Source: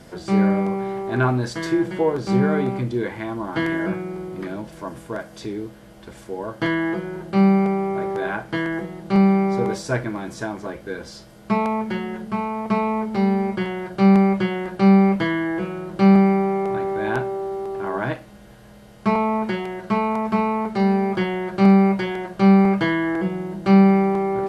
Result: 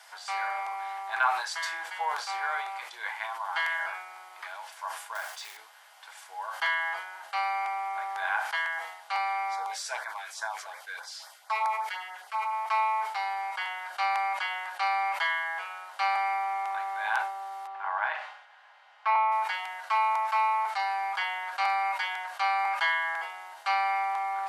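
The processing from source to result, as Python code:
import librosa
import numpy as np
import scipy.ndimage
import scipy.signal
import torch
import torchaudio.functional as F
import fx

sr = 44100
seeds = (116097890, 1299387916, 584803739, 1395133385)

y = fx.quant_float(x, sr, bits=2, at=(5.15, 5.57))
y = fx.filter_lfo_notch(y, sr, shape='sine', hz=fx.line((9.55, 1.7), (12.51, 9.3)), low_hz=830.0, high_hz=2900.0, q=1.4, at=(9.55, 12.51), fade=0.02)
y = fx.lowpass(y, sr, hz=2800.0, slope=12, at=(17.67, 19.32))
y = scipy.signal.sosfilt(scipy.signal.ellip(4, 1.0, 70, 810.0, 'highpass', fs=sr, output='sos'), y)
y = fx.sustainer(y, sr, db_per_s=71.0)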